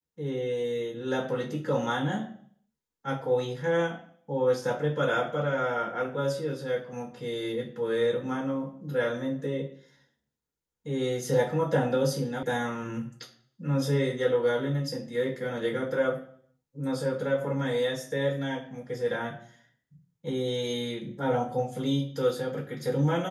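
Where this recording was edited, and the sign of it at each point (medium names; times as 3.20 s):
12.43 s: sound stops dead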